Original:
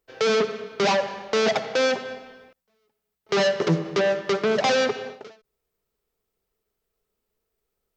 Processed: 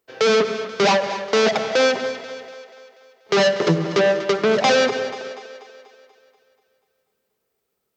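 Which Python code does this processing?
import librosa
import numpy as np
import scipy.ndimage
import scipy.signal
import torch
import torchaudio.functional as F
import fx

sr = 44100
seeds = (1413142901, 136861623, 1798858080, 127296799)

y = scipy.signal.sosfilt(scipy.signal.butter(2, 110.0, 'highpass', fs=sr, output='sos'), x)
y = fx.echo_split(y, sr, split_hz=330.0, low_ms=96, high_ms=242, feedback_pct=52, wet_db=-13.0)
y = fx.end_taper(y, sr, db_per_s=150.0)
y = F.gain(torch.from_numpy(y), 4.5).numpy()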